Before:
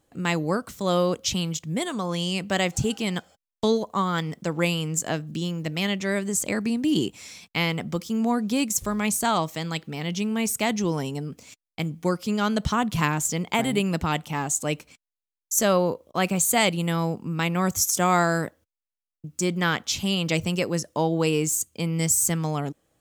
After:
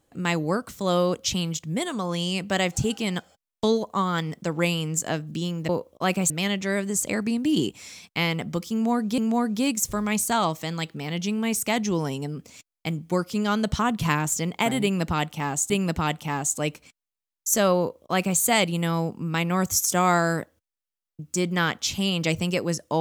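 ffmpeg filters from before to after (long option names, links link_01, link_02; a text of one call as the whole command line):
ffmpeg -i in.wav -filter_complex "[0:a]asplit=5[link_01][link_02][link_03][link_04][link_05];[link_01]atrim=end=5.692[link_06];[link_02]atrim=start=15.828:end=16.442[link_07];[link_03]atrim=start=5.688:end=8.572[link_08];[link_04]atrim=start=8.108:end=14.632[link_09];[link_05]atrim=start=13.748[link_10];[link_06][link_07]acrossfade=duration=0.004:curve1=hsin:curve2=hsin[link_11];[link_11][link_08]acrossfade=duration=0.004:curve1=hsin:curve2=hsin[link_12];[link_12][link_09]acrossfade=duration=0.004:curve1=hsin:curve2=hsin[link_13];[link_13][link_10]acrossfade=duration=0.004:curve1=hsin:curve2=hsin" out.wav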